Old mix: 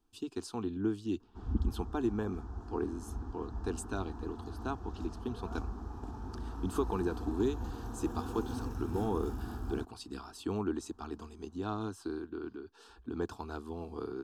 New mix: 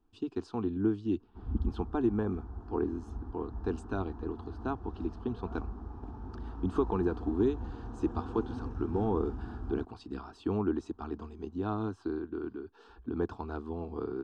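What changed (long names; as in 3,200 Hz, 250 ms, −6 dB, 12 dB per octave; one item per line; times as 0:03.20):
speech +4.5 dB
master: add head-to-tape spacing loss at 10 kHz 27 dB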